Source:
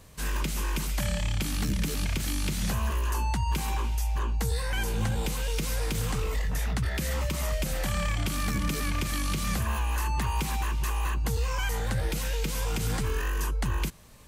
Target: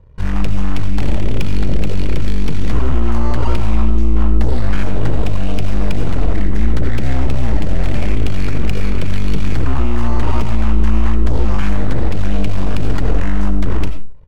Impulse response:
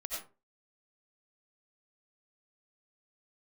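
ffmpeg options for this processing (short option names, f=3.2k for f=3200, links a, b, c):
-filter_complex "[0:a]lowshelf=f=200:g=11,aecho=1:1:2.1:0.71,adynamicsmooth=sensitivity=5:basefreq=1.4k,aeval=exprs='0.447*(cos(1*acos(clip(val(0)/0.447,-1,1)))-cos(1*PI/2))+0.0891*(cos(4*acos(clip(val(0)/0.447,-1,1)))-cos(4*PI/2))+0.126*(cos(8*acos(clip(val(0)/0.447,-1,1)))-cos(8*PI/2))':c=same,asplit=2[a][b];[1:a]atrim=start_sample=2205[c];[b][c]afir=irnorm=-1:irlink=0,volume=-6.5dB[d];[a][d]amix=inputs=2:normalize=0,volume=-5.5dB"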